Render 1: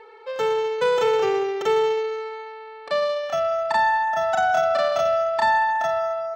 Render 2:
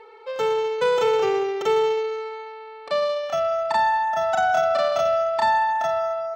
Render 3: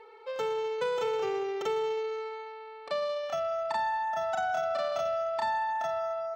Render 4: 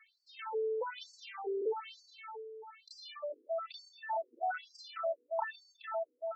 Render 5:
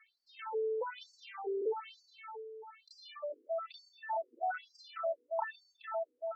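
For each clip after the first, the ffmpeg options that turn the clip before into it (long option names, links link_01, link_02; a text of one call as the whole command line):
ffmpeg -i in.wav -af "bandreject=frequency=1700:width=11" out.wav
ffmpeg -i in.wav -af "acompressor=threshold=-25dB:ratio=2,volume=-5.5dB" out.wav
ffmpeg -i in.wav -af "afftfilt=real='re*between(b*sr/1024,340*pow(6100/340,0.5+0.5*sin(2*PI*1.1*pts/sr))/1.41,340*pow(6100/340,0.5+0.5*sin(2*PI*1.1*pts/sr))*1.41)':imag='im*between(b*sr/1024,340*pow(6100/340,0.5+0.5*sin(2*PI*1.1*pts/sr))/1.41,340*pow(6100/340,0.5+0.5*sin(2*PI*1.1*pts/sr))*1.41)':win_size=1024:overlap=0.75,volume=-1dB" out.wav
ffmpeg -i in.wav -af "lowpass=frequency=3100:poles=1" out.wav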